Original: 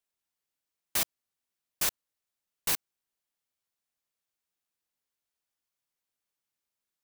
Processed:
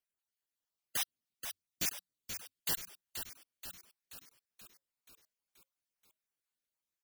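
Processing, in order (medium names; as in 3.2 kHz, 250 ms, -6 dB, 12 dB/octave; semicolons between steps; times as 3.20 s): random holes in the spectrogram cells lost 38%; 1.01–2.71 s: graphic EQ 125/250/1000/4000 Hz +5/+8/-11/+3 dB; frequency-shifting echo 480 ms, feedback 57%, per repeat -91 Hz, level -8 dB; trim -4 dB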